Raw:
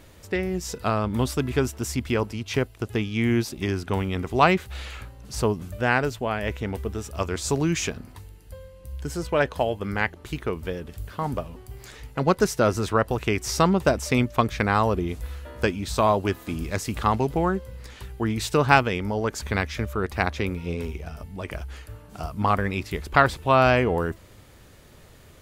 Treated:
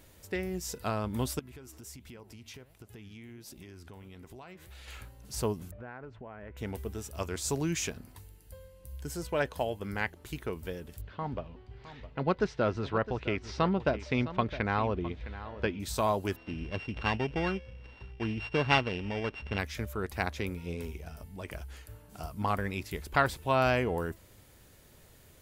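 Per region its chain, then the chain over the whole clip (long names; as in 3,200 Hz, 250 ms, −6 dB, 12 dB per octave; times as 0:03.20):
0:01.39–0:04.88: flanger 1.4 Hz, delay 3.3 ms, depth 10 ms, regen +83% + downward compressor 8 to 1, threshold −37 dBFS
0:05.71–0:06.57: Chebyshev low-pass filter 1,500 Hz + downward compressor 4 to 1, threshold −35 dBFS + highs frequency-modulated by the lows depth 0.13 ms
0:11.01–0:15.80: low-pass filter 3,900 Hz 24 dB per octave + single-tap delay 661 ms −14.5 dB
0:16.36–0:19.59: samples sorted by size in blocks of 16 samples + low-pass filter 3,900 Hz 24 dB per octave
whole clip: high-shelf EQ 8,600 Hz +10.5 dB; notch filter 1,200 Hz, Q 15; level −8 dB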